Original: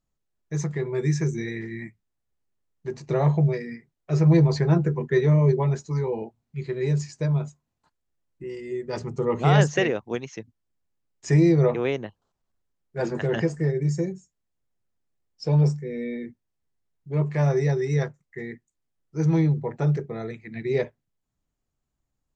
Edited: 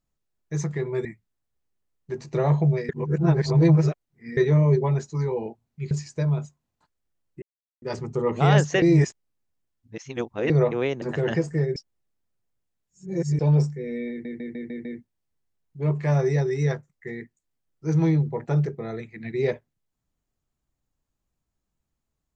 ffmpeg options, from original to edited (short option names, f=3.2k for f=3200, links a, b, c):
-filter_complex "[0:a]asplit=17[a][b][c][d][e][f][g][h][i][j][k][l][m][n][o][p][q];[a]atrim=end=1.052[r];[b]atrim=start=1.808:end=3.652[s];[c]atrim=start=3.648:end=5.132,asetpts=PTS-STARTPTS,areverse[t];[d]atrim=start=5.128:end=6.672[u];[e]atrim=start=6.938:end=8.45,asetpts=PTS-STARTPTS,afade=t=out:st=1.508:d=0.004:c=hsin[v];[f]atrim=start=8.45:end=8.85,asetpts=PTS-STARTPTS,volume=0[w];[g]atrim=start=8.85:end=9.852,asetpts=PTS-STARTPTS,afade=t=in:d=0.004:c=hsin[x];[h]atrim=start=9.848:end=11.532,asetpts=PTS-STARTPTS,areverse[y];[i]atrim=start=11.528:end=12.052[z];[j]atrim=start=13.078:end=13.822[aa];[k]atrim=start=13.818:end=15.452,asetpts=PTS-STARTPTS,areverse[ab];[l]atrim=start=15.448:end=16.312[ac];[m]atrim=start=16.158:end=16.312[ad];[n]atrim=start=16.158:end=16.312[ae];[o]atrim=start=16.158:end=16.312[af];[p]atrim=start=16.158:end=16.312[ag];[q]atrim=start=16.158[ah];[r][s]acrossfade=d=0.004:c1=hsin:c2=hsin[ai];[ai][t]acrossfade=d=0.004:c1=hsin:c2=hsin[aj];[aj][u]acrossfade=d=0.004:c1=hsin:c2=hsin[ak];[v][w][x]concat=n=3:v=0:a=1[al];[ak][al]acrossfade=d=0.004:c1=hsin:c2=hsin[am];[am][y]acrossfade=d=0.004:c1=hsin:c2=hsin[an];[an][z]acrossfade=d=0.004:c1=hsin:c2=hsin[ao];[ao][aa]acrossfade=d=0.004:c1=hsin:c2=hsin[ap];[ap][ab]acrossfade=d=0.004:c1=hsin:c2=hsin[aq];[aq][ac]acrossfade=d=0.004:c1=hsin:c2=hsin[ar];[ar][ad]acrossfade=d=0.004:c1=hsin:c2=hsin[as];[as][ae]acrossfade=d=0.004:c1=hsin:c2=hsin[at];[at][af]acrossfade=d=0.004:c1=hsin:c2=hsin[au];[au][ag]acrossfade=d=0.004:c1=hsin:c2=hsin[av];[av][ah]acrossfade=d=0.004:c1=hsin:c2=hsin"